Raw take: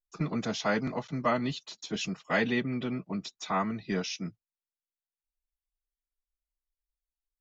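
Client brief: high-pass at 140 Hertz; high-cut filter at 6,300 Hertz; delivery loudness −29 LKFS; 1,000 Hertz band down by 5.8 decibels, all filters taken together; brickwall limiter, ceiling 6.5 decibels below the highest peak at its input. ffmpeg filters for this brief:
ffmpeg -i in.wav -af "highpass=140,lowpass=6300,equalizer=frequency=1000:width_type=o:gain=-8,volume=6.5dB,alimiter=limit=-17.5dB:level=0:latency=1" out.wav

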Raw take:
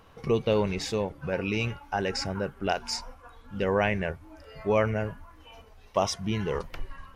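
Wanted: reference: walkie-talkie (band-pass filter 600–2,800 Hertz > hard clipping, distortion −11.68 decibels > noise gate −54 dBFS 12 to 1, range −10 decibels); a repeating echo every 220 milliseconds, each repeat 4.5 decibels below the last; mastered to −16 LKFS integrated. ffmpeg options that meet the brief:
ffmpeg -i in.wav -af "highpass=600,lowpass=2800,aecho=1:1:220|440|660|880|1100|1320|1540|1760|1980:0.596|0.357|0.214|0.129|0.0772|0.0463|0.0278|0.0167|0.01,asoftclip=type=hard:threshold=-25dB,agate=range=-10dB:threshold=-54dB:ratio=12,volume=18dB" out.wav

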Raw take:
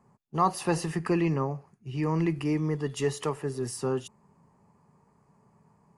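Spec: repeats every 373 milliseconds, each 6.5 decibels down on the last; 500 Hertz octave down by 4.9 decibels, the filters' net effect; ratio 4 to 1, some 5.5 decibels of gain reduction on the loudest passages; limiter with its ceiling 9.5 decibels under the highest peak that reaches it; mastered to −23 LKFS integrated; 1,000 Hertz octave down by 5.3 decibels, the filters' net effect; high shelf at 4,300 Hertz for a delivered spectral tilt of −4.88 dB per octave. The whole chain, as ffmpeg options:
ffmpeg -i in.wav -af "equalizer=frequency=500:width_type=o:gain=-6,equalizer=frequency=1000:width_type=o:gain=-5,highshelf=frequency=4300:gain=4,acompressor=threshold=-30dB:ratio=4,alimiter=level_in=6dB:limit=-24dB:level=0:latency=1,volume=-6dB,aecho=1:1:373|746|1119|1492|1865|2238:0.473|0.222|0.105|0.0491|0.0231|0.0109,volume=15.5dB" out.wav

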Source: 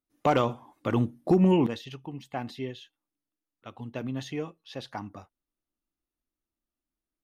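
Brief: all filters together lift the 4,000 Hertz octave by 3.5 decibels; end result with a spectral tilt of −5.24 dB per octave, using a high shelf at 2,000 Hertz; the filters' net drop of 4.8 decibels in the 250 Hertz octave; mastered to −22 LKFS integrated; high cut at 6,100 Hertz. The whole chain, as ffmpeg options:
ffmpeg -i in.wav -af "lowpass=6100,equalizer=frequency=250:width_type=o:gain=-7.5,highshelf=frequency=2000:gain=-3.5,equalizer=frequency=4000:width_type=o:gain=8.5,volume=10dB" out.wav

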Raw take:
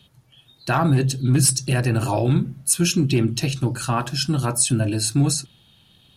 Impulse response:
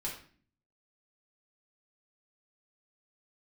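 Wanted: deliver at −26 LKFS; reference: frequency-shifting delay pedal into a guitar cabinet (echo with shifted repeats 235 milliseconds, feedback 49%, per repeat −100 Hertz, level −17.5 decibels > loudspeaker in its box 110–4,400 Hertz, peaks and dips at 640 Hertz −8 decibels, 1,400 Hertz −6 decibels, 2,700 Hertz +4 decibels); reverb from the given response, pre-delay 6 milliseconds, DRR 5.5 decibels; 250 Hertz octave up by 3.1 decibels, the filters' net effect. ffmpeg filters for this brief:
-filter_complex "[0:a]equalizer=frequency=250:width_type=o:gain=5,asplit=2[link_01][link_02];[1:a]atrim=start_sample=2205,adelay=6[link_03];[link_02][link_03]afir=irnorm=-1:irlink=0,volume=-7dB[link_04];[link_01][link_04]amix=inputs=2:normalize=0,asplit=5[link_05][link_06][link_07][link_08][link_09];[link_06]adelay=235,afreqshift=-100,volume=-17.5dB[link_10];[link_07]adelay=470,afreqshift=-200,volume=-23.7dB[link_11];[link_08]adelay=705,afreqshift=-300,volume=-29.9dB[link_12];[link_09]adelay=940,afreqshift=-400,volume=-36.1dB[link_13];[link_05][link_10][link_11][link_12][link_13]amix=inputs=5:normalize=0,highpass=110,equalizer=frequency=640:width_type=q:width=4:gain=-8,equalizer=frequency=1400:width_type=q:width=4:gain=-6,equalizer=frequency=2700:width_type=q:width=4:gain=4,lowpass=frequency=4400:width=0.5412,lowpass=frequency=4400:width=1.3066,volume=-5.5dB"

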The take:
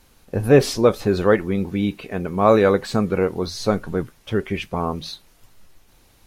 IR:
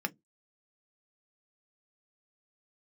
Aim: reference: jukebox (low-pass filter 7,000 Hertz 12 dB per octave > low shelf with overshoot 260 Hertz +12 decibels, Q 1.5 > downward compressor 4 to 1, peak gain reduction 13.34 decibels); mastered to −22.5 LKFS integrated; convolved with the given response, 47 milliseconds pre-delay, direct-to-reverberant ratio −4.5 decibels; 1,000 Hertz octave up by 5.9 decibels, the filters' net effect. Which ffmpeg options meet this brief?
-filter_complex "[0:a]equalizer=frequency=1000:width_type=o:gain=8.5,asplit=2[link_01][link_02];[1:a]atrim=start_sample=2205,adelay=47[link_03];[link_02][link_03]afir=irnorm=-1:irlink=0,volume=0dB[link_04];[link_01][link_04]amix=inputs=2:normalize=0,lowpass=7000,lowshelf=frequency=260:width_type=q:width=1.5:gain=12,acompressor=threshold=-11dB:ratio=4,volume=-8.5dB"

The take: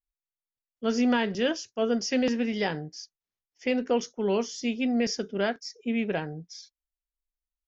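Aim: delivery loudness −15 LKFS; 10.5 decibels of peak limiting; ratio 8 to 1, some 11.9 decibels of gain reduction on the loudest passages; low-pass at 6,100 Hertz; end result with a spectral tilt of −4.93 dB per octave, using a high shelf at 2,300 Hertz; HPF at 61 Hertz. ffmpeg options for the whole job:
ffmpeg -i in.wav -af "highpass=61,lowpass=6100,highshelf=frequency=2300:gain=-3.5,acompressor=threshold=-33dB:ratio=8,volume=26.5dB,alimiter=limit=-5dB:level=0:latency=1" out.wav

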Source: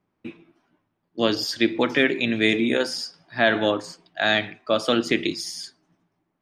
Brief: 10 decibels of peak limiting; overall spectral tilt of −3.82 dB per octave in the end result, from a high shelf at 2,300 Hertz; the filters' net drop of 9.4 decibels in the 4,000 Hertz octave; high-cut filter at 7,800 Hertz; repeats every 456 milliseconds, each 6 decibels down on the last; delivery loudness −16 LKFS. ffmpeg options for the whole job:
ffmpeg -i in.wav -af "lowpass=7800,highshelf=frequency=2300:gain=-3.5,equalizer=frequency=4000:width_type=o:gain=-8.5,alimiter=limit=-17.5dB:level=0:latency=1,aecho=1:1:456|912|1368|1824|2280|2736:0.501|0.251|0.125|0.0626|0.0313|0.0157,volume=12.5dB" out.wav

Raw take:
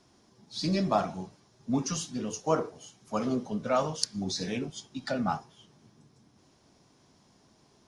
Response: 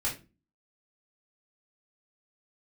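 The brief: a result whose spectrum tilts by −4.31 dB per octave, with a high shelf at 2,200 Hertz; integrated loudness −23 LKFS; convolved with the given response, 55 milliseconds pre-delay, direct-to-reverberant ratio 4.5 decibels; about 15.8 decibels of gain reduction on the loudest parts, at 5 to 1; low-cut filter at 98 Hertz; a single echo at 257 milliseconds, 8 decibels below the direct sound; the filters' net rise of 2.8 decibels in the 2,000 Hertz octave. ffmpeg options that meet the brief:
-filter_complex "[0:a]highpass=98,equalizer=frequency=2000:width_type=o:gain=5.5,highshelf=frequency=2200:gain=-3,acompressor=threshold=-39dB:ratio=5,aecho=1:1:257:0.398,asplit=2[link_01][link_02];[1:a]atrim=start_sample=2205,adelay=55[link_03];[link_02][link_03]afir=irnorm=-1:irlink=0,volume=-10dB[link_04];[link_01][link_04]amix=inputs=2:normalize=0,volume=18dB"

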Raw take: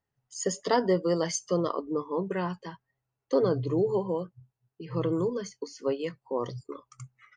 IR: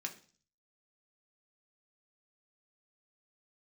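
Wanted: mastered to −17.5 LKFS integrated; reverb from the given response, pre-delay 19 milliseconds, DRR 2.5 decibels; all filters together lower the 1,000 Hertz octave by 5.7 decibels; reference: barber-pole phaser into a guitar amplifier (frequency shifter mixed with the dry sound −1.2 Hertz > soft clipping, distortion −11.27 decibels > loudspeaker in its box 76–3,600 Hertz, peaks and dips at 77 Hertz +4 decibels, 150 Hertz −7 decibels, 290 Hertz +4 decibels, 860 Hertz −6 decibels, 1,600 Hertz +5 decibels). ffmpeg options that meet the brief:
-filter_complex "[0:a]equalizer=frequency=1000:width_type=o:gain=-4.5,asplit=2[link_01][link_02];[1:a]atrim=start_sample=2205,adelay=19[link_03];[link_02][link_03]afir=irnorm=-1:irlink=0,volume=-2dB[link_04];[link_01][link_04]amix=inputs=2:normalize=0,asplit=2[link_05][link_06];[link_06]afreqshift=-1.2[link_07];[link_05][link_07]amix=inputs=2:normalize=1,asoftclip=threshold=-26dB,highpass=76,equalizer=frequency=77:width_type=q:width=4:gain=4,equalizer=frequency=150:width_type=q:width=4:gain=-7,equalizer=frequency=290:width_type=q:width=4:gain=4,equalizer=frequency=860:width_type=q:width=4:gain=-6,equalizer=frequency=1600:width_type=q:width=4:gain=5,lowpass=frequency=3600:width=0.5412,lowpass=frequency=3600:width=1.3066,volume=17.5dB"

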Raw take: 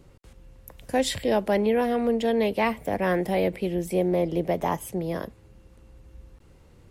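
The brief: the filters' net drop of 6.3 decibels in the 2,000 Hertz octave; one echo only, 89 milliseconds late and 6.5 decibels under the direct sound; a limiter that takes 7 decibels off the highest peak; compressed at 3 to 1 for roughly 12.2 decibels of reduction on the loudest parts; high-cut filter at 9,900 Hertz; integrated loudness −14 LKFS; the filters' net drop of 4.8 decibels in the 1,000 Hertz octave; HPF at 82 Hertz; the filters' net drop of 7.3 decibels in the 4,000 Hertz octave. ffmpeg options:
ffmpeg -i in.wav -af "highpass=82,lowpass=9900,equalizer=frequency=1000:width_type=o:gain=-6,equalizer=frequency=2000:width_type=o:gain=-4,equalizer=frequency=4000:width_type=o:gain=-7.5,acompressor=threshold=-37dB:ratio=3,alimiter=level_in=6dB:limit=-24dB:level=0:latency=1,volume=-6dB,aecho=1:1:89:0.473,volume=25dB" out.wav

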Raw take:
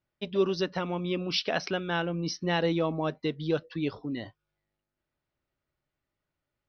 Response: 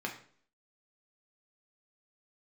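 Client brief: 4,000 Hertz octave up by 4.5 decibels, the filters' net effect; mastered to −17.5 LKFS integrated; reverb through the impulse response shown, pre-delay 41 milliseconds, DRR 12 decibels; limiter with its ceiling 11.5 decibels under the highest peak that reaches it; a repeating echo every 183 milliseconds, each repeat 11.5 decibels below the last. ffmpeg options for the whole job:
-filter_complex "[0:a]equalizer=frequency=4000:width_type=o:gain=6,alimiter=limit=-23.5dB:level=0:latency=1,aecho=1:1:183|366|549:0.266|0.0718|0.0194,asplit=2[link_01][link_02];[1:a]atrim=start_sample=2205,adelay=41[link_03];[link_02][link_03]afir=irnorm=-1:irlink=0,volume=-15.5dB[link_04];[link_01][link_04]amix=inputs=2:normalize=0,volume=15.5dB"

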